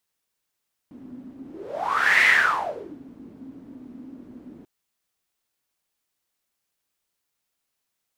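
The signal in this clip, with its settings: whoosh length 3.74 s, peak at 1.33, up 0.88 s, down 0.83 s, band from 260 Hz, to 2000 Hz, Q 9.6, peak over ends 26 dB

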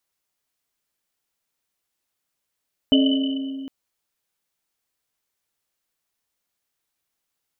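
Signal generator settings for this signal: Risset drum length 0.76 s, pitch 270 Hz, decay 2.71 s, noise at 3000 Hz, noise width 130 Hz, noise 25%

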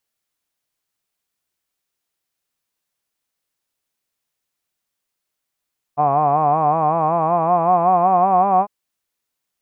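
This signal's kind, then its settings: formant-synthesis vowel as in hod, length 2.70 s, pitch 142 Hz, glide +5.5 st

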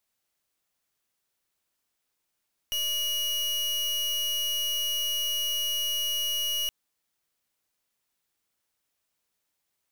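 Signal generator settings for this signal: pulse 2900 Hz, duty 36% -28.5 dBFS 3.97 s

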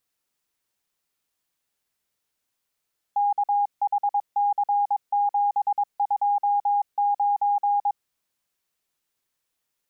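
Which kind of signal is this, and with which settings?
Morse "KHC729" 22 wpm 816 Hz -18.5 dBFS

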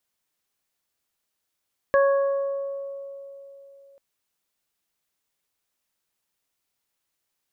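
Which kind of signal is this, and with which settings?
additive tone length 2.04 s, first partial 554 Hz, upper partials -7.5/-9 dB, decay 3.42 s, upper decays 1.79/0.98 s, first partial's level -15 dB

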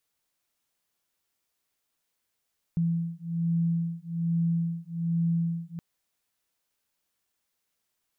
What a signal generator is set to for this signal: beating tones 167 Hz, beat 1.2 Hz, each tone -28 dBFS 3.02 s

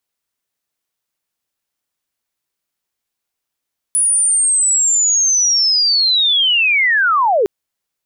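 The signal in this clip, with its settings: chirp linear 9900 Hz -> 370 Hz -11 dBFS -> -10.5 dBFS 3.51 s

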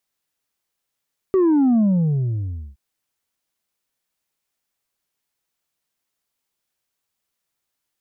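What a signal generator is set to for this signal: sub drop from 390 Hz, over 1.42 s, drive 3 dB, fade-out 0.98 s, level -13.5 dB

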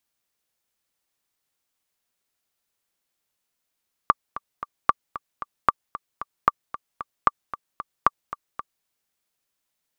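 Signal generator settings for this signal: metronome 227 bpm, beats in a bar 3, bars 6, 1170 Hz, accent 15.5 dB -2 dBFS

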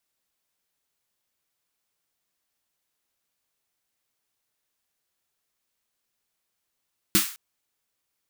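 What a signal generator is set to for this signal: snare drum length 0.21 s, tones 200 Hz, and 320 Hz, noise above 1200 Hz, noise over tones 2.5 dB, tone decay 0.14 s, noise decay 0.42 s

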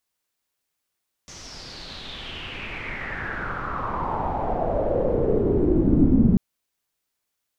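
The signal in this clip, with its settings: swept filtered noise pink, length 5.09 s lowpass, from 6200 Hz, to 220 Hz, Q 5.6, exponential, gain ramp +27 dB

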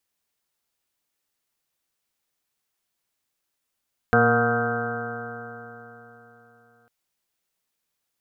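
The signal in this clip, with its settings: stretched partials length 2.75 s, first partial 116 Hz, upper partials 1.5/-14/4.5/-10.5/3/-13/-12/-9/-1/0/2.5 dB, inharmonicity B 0.0018, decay 3.69 s, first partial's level -23.5 dB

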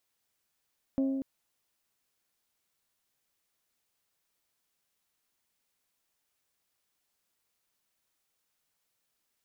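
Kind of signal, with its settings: glass hit bell, length 0.24 s, lowest mode 269 Hz, decay 1.85 s, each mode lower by 10 dB, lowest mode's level -24 dB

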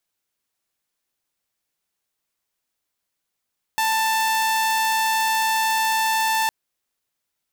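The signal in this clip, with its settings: tone saw 886 Hz -16 dBFS 2.71 s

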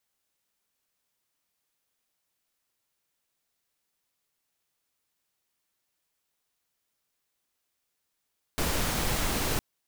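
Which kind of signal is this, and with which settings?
noise pink, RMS -28 dBFS 1.01 s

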